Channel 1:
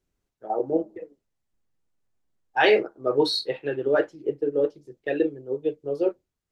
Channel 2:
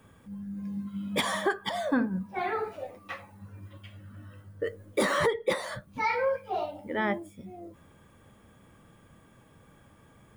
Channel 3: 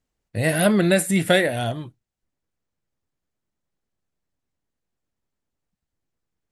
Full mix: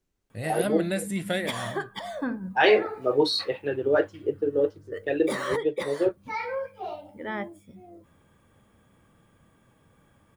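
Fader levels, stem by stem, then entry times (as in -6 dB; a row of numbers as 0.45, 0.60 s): -0.5, -4.0, -11.0 dB; 0.00, 0.30, 0.00 s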